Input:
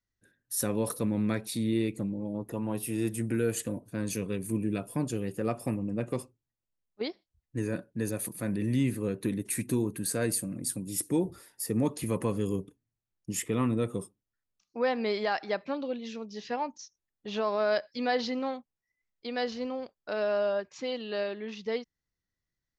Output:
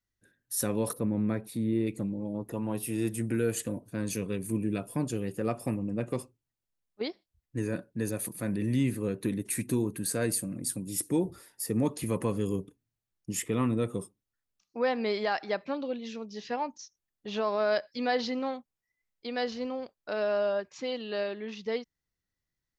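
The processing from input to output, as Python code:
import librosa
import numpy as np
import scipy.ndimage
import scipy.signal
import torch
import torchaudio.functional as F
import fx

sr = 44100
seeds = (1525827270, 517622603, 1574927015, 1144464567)

y = fx.peak_eq(x, sr, hz=5200.0, db=-13.5, octaves=2.5, at=(0.93, 1.87))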